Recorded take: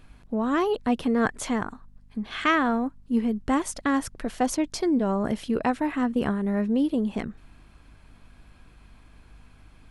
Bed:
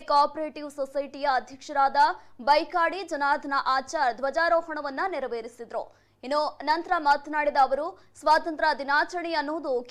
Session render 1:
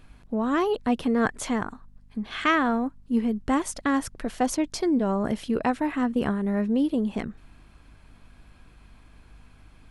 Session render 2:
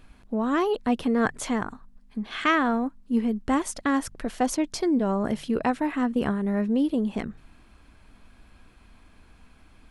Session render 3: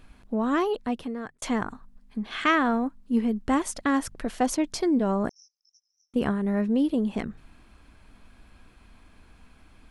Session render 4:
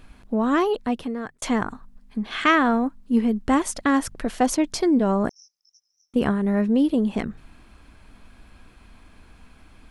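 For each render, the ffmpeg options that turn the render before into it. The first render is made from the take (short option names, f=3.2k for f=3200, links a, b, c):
-af anull
-af "bandreject=f=50:t=h:w=4,bandreject=f=100:t=h:w=4,bandreject=f=150:t=h:w=4"
-filter_complex "[0:a]asettb=1/sr,asplit=3[a][b][c];[a]atrim=end=5.294[d];[b]atrim=start=5.29:end=6.14,asetpts=PTS-STARTPTS,afade=t=in:d=0.004:c=qsin,afade=t=out:st=0.846:d=0.004:c=qsin,asuperpass=centerf=5700:order=8:qfactor=5.8[e];[c]atrim=start=6.136[f];[d][e]acrossfade=d=0.004:c1=hsin:c2=qsin[g];[g][f]acrossfade=d=0.004:c1=qsin:c2=hsin,asplit=2[h][i];[h]atrim=end=1.42,asetpts=PTS-STARTPTS,afade=t=out:st=0.53:d=0.89[j];[i]atrim=start=1.42,asetpts=PTS-STARTPTS,afade=t=in:d=0.004:c=hsin[k];[j][k]concat=n=2:v=0:a=1"
-af "volume=4dB"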